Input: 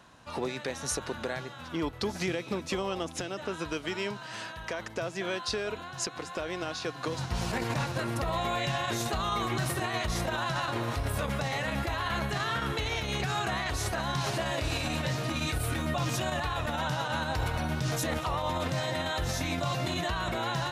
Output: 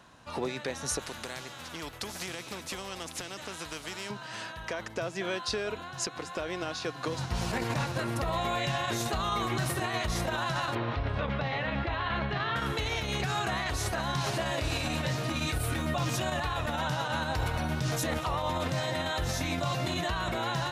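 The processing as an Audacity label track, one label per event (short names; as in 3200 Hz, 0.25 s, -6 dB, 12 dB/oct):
0.990000	4.100000	spectral compressor 2:1
10.750000	12.560000	LPF 3800 Hz 24 dB/oct
15.220000	16.170000	short-mantissa float mantissa of 6-bit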